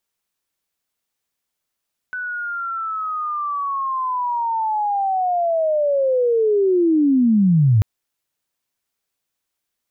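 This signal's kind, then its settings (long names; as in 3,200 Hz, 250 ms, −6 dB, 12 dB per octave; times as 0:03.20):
glide linear 1,500 Hz → 99 Hz −24 dBFS → −10.5 dBFS 5.69 s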